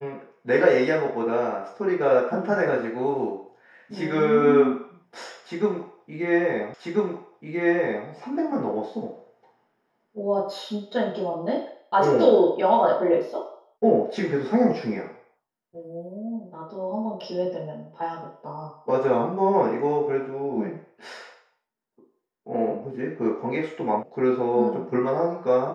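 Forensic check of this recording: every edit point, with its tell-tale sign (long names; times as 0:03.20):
0:06.74: the same again, the last 1.34 s
0:24.03: cut off before it has died away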